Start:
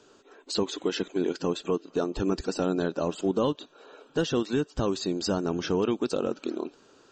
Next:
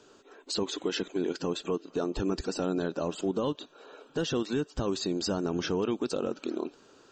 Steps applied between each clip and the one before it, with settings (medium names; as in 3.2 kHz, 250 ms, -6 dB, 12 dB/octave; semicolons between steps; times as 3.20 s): peak limiter -20.5 dBFS, peak gain reduction 6 dB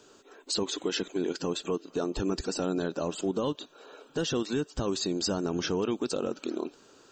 treble shelf 7 kHz +9 dB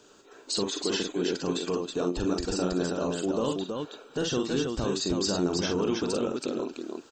multi-tap echo 45/324 ms -5/-4 dB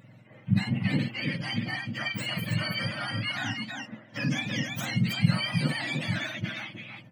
spectrum inverted on a logarithmic axis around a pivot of 910 Hz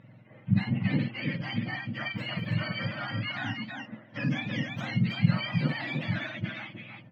distance through air 240 m